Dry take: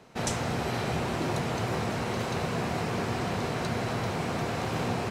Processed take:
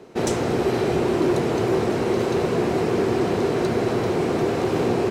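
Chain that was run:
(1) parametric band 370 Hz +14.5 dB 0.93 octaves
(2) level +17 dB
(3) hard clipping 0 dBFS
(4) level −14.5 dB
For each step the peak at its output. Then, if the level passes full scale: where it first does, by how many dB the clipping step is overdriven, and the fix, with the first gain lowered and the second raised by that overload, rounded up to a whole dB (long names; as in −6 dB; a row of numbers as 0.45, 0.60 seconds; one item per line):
−10.0, +7.0, 0.0, −14.5 dBFS
step 2, 7.0 dB
step 2 +10 dB, step 4 −7.5 dB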